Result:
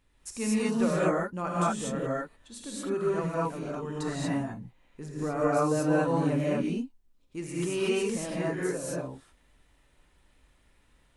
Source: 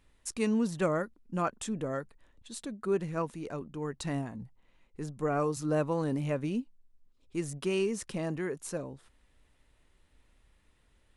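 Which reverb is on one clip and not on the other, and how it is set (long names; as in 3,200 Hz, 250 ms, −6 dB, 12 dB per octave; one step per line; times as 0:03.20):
reverb whose tail is shaped and stops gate 260 ms rising, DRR −7.5 dB
level −3.5 dB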